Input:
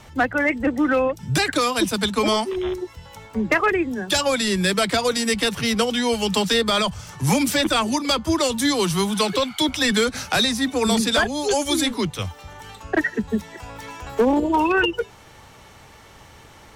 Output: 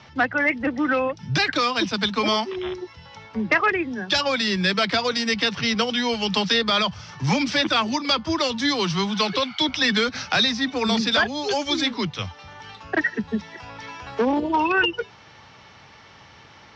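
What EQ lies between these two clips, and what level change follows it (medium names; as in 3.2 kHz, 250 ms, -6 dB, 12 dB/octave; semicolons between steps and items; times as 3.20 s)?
high-pass 110 Hz 12 dB/octave; elliptic low-pass 5.5 kHz, stop band 60 dB; peaking EQ 410 Hz -5 dB 1.8 oct; +1.5 dB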